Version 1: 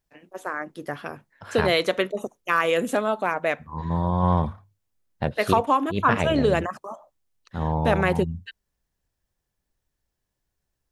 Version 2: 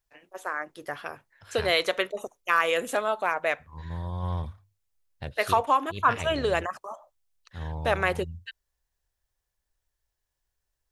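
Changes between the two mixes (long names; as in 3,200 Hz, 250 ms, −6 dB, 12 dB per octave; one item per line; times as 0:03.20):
second voice: add parametric band 920 Hz −13 dB 2.5 octaves
master: add parametric band 200 Hz −13.5 dB 1.8 octaves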